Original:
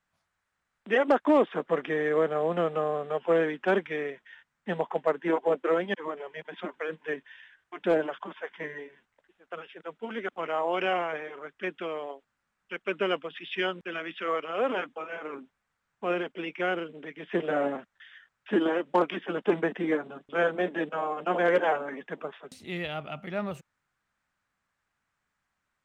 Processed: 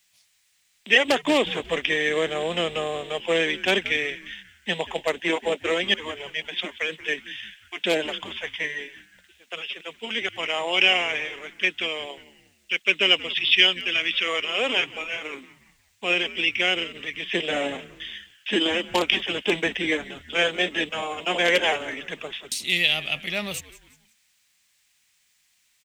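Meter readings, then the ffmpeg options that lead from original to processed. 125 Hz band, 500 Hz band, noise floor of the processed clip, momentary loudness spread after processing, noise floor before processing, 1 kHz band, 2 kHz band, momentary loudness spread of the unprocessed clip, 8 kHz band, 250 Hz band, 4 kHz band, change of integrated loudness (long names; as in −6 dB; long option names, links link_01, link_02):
+0.5 dB, 0.0 dB, −66 dBFS, 15 LU, −81 dBFS, −0.5 dB, +10.5 dB, 15 LU, can't be measured, 0.0 dB, +20.0 dB, +6.0 dB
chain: -filter_complex "[0:a]aexciter=amount=12.5:drive=3:freq=2100,asplit=4[link_01][link_02][link_03][link_04];[link_02]adelay=180,afreqshift=-120,volume=-18dB[link_05];[link_03]adelay=360,afreqshift=-240,volume=-25.5dB[link_06];[link_04]adelay=540,afreqshift=-360,volume=-33.1dB[link_07];[link_01][link_05][link_06][link_07]amix=inputs=4:normalize=0"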